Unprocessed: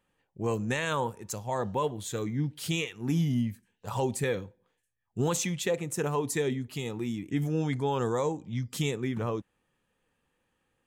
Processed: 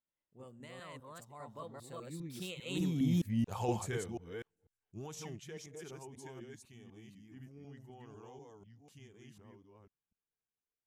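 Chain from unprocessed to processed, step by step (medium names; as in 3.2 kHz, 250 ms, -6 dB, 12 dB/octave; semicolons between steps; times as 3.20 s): chunks repeated in reverse 224 ms, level -0.5 dB; Doppler pass-by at 3.30 s, 37 m/s, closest 10 m; trim -2.5 dB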